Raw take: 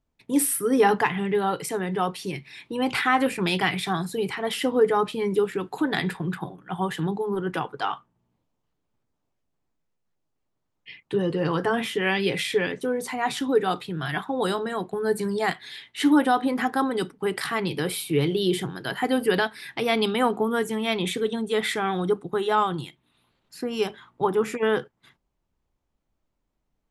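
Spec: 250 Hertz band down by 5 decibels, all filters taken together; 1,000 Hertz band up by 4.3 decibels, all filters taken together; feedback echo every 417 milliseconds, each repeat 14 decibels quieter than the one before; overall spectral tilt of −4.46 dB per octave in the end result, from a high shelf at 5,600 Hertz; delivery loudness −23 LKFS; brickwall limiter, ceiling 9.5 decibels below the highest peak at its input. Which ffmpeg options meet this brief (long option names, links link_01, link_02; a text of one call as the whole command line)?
ffmpeg -i in.wav -af "equalizer=frequency=250:width_type=o:gain=-7,equalizer=frequency=1000:width_type=o:gain=6.5,highshelf=frequency=5600:gain=-7,alimiter=limit=-14dB:level=0:latency=1,aecho=1:1:417|834:0.2|0.0399,volume=4dB" out.wav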